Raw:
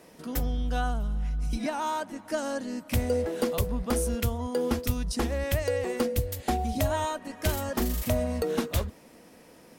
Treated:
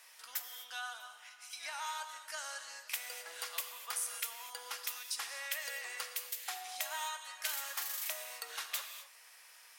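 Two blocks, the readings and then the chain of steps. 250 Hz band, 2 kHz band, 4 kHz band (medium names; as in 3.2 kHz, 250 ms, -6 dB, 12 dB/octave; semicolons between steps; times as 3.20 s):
under -40 dB, -3.5 dB, -1.5 dB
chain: Bessel high-pass 1.6 kHz, order 4; in parallel at -1.5 dB: compression, threshold -51 dBFS, peak gain reduction 19 dB; on the sum: gated-style reverb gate 280 ms flat, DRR 6 dB; trim -3.5 dB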